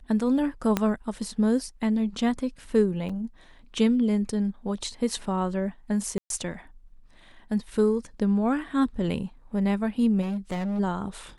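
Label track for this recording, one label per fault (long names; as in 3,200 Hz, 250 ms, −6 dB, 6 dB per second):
0.770000	0.770000	click −9 dBFS
3.090000	3.090000	drop-out 4.9 ms
6.180000	6.300000	drop-out 122 ms
10.210000	10.800000	clipping −26 dBFS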